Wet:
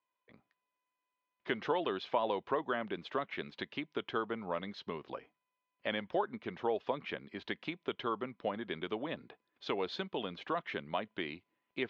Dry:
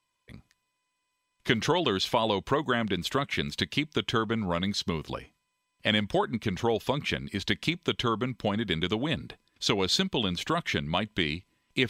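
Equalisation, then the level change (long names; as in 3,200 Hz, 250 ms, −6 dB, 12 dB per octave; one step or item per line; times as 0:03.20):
band-pass filter 540–5,200 Hz
high-frequency loss of the air 150 metres
spectral tilt −3.5 dB per octave
−5.0 dB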